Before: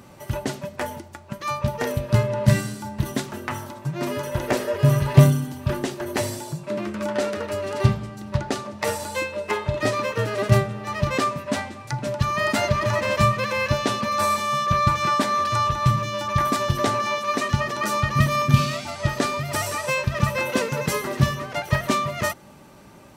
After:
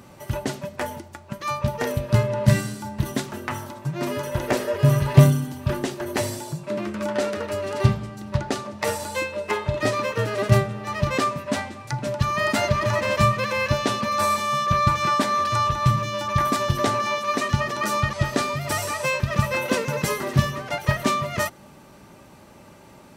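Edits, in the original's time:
0:18.13–0:18.97: remove

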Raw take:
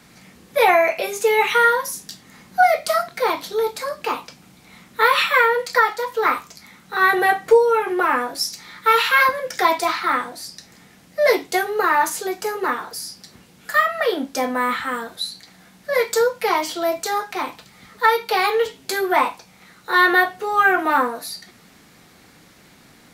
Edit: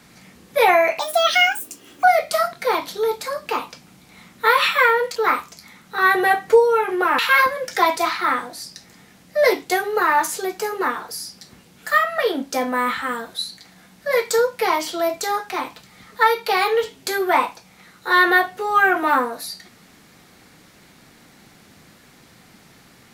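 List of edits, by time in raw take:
0:00.99–0:02.59: play speed 153%
0:05.71–0:06.14: remove
0:08.17–0:09.01: remove

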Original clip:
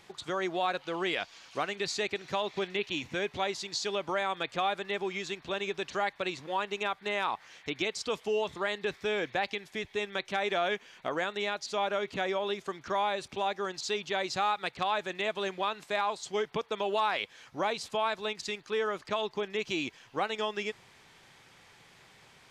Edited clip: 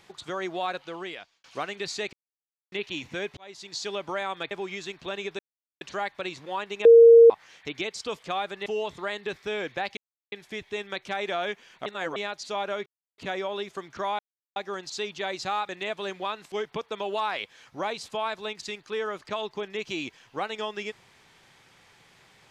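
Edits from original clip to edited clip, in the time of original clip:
0:00.73–0:01.44: fade out
0:02.13–0:02.72: silence
0:03.37–0:03.81: fade in
0:04.51–0:04.94: move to 0:08.24
0:05.82: splice in silence 0.42 s
0:06.86–0:07.31: beep over 463 Hz −8.5 dBFS
0:09.55: splice in silence 0.35 s
0:11.09–0:11.39: reverse
0:12.09: splice in silence 0.32 s
0:13.10–0:13.47: silence
0:14.60–0:15.07: remove
0:15.90–0:16.32: remove

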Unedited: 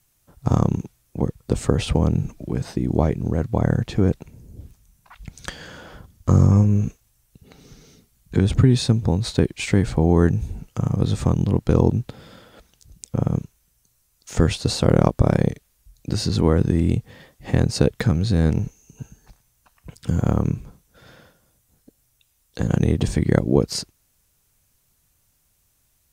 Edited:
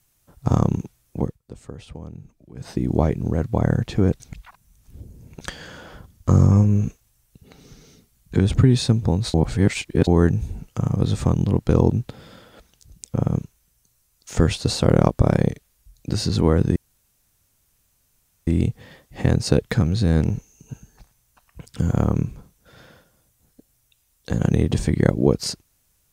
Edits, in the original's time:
0:01.20–0:02.74: duck −18 dB, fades 0.19 s
0:04.20–0:05.41: reverse
0:09.34–0:10.07: reverse
0:16.76: splice in room tone 1.71 s

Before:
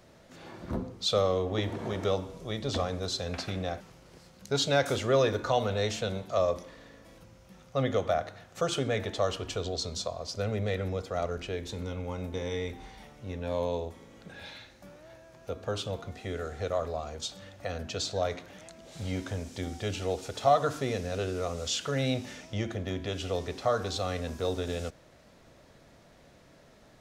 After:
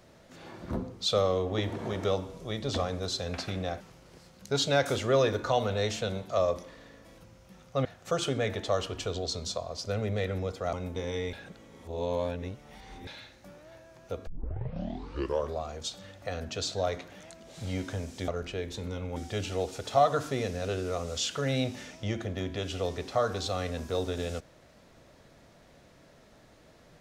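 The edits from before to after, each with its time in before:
0:07.85–0:08.35: remove
0:11.23–0:12.11: move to 0:19.66
0:12.71–0:14.45: reverse
0:15.65: tape start 1.30 s

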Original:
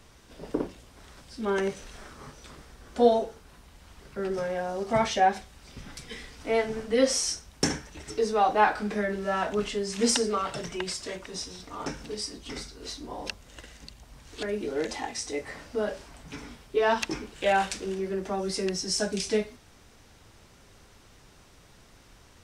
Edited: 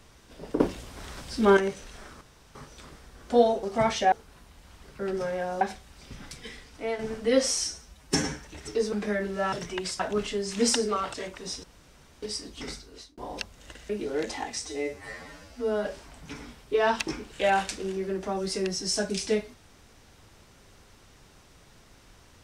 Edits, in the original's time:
0:00.60–0:01.57: clip gain +9 dB
0:02.21: splice in room tone 0.34 s
0:04.78–0:05.27: move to 0:03.29
0:05.95–0:06.65: fade out, to −7 dB
0:07.30–0:07.77: time-stretch 1.5×
0:08.35–0:08.81: remove
0:10.55–0:11.02: move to 0:09.41
0:11.52–0:12.11: fill with room tone
0:12.62–0:13.06: fade out
0:13.78–0:14.51: remove
0:15.28–0:15.87: time-stretch 2×

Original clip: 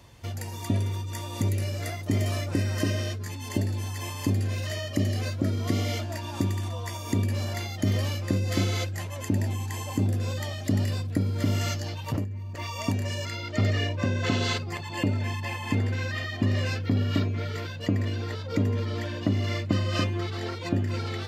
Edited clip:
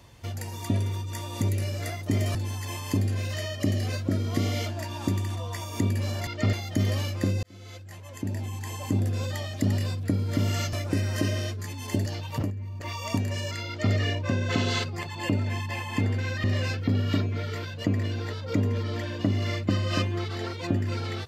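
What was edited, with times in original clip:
0:02.35–0:03.68: move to 0:11.80
0:08.50–0:10.08: fade in
0:13.42–0:13.68: duplicate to 0:07.60
0:16.18–0:16.46: remove

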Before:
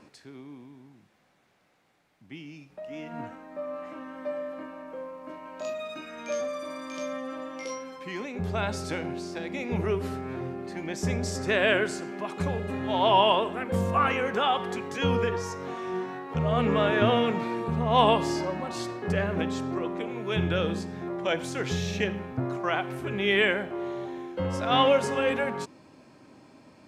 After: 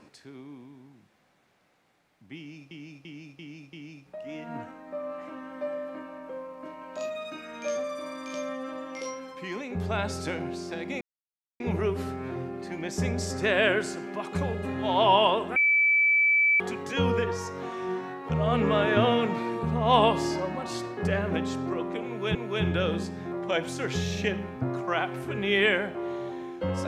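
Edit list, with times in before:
0:02.37–0:02.71: repeat, 5 plays
0:09.65: splice in silence 0.59 s
0:13.61–0:14.65: beep over 2,310 Hz −18.5 dBFS
0:20.11–0:20.40: repeat, 2 plays

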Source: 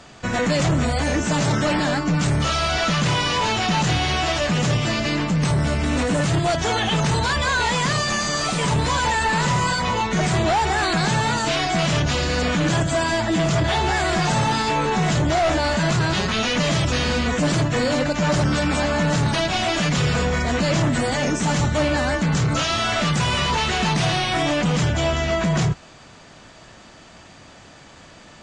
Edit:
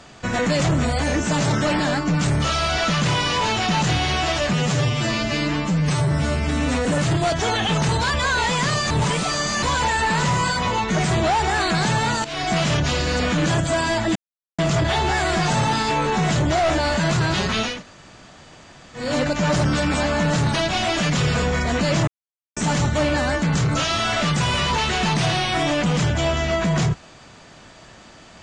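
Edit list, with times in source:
0:04.53–0:06.08: time-stretch 1.5×
0:08.13–0:08.85: reverse
0:11.47–0:11.72: fade in, from −16.5 dB
0:13.38: splice in silence 0.43 s
0:16.51–0:17.84: fill with room tone, crossfade 0.24 s
0:20.87–0:21.36: silence

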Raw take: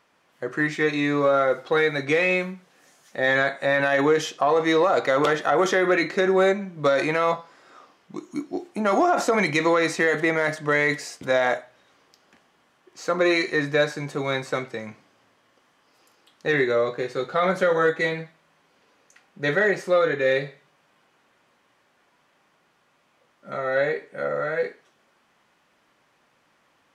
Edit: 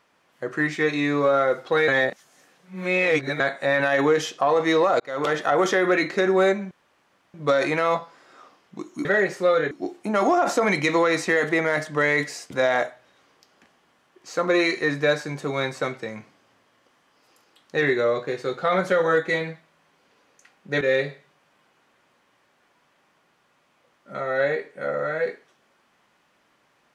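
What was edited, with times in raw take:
0:01.88–0:03.40: reverse
0:05.00–0:05.38: fade in
0:06.71: splice in room tone 0.63 s
0:19.52–0:20.18: move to 0:08.42

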